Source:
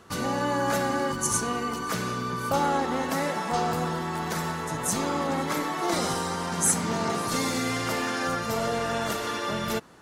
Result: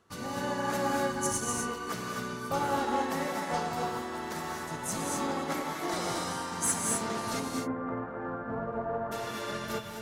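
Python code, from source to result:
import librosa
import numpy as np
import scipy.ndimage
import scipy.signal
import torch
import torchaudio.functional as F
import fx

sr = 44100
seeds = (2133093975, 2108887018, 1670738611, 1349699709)

p1 = fx.cheby2_lowpass(x, sr, hz=5700.0, order=4, stop_db=70, at=(7.39, 9.11), fade=0.02)
p2 = np.clip(p1, -10.0 ** (-22.5 / 20.0), 10.0 ** (-22.5 / 20.0))
p3 = p1 + (p2 * librosa.db_to_amplitude(-10.0))
p4 = fx.rev_gated(p3, sr, seeds[0], gate_ms=280, shape='rising', drr_db=0.5)
p5 = fx.upward_expand(p4, sr, threshold_db=-37.0, expansion=1.5)
y = p5 * librosa.db_to_amplitude(-7.5)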